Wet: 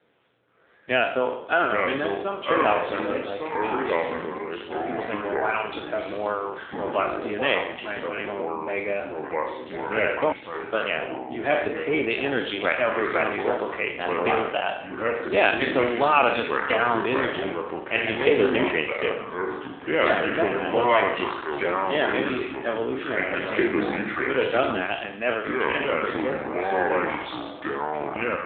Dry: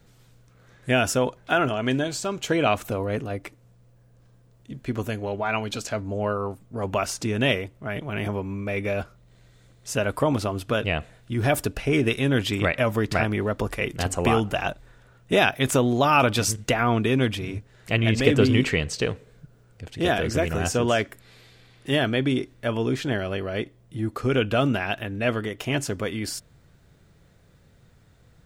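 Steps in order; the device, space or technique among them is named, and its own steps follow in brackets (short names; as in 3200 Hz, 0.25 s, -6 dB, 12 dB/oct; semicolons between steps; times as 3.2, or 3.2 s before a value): spectral trails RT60 0.70 s; 10.32–10.73 passive tone stack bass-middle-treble 6-0-2; echoes that change speed 0.568 s, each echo -4 st, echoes 3; telephone (BPF 360–3500 Hz; AMR-NB 7.4 kbps 8000 Hz)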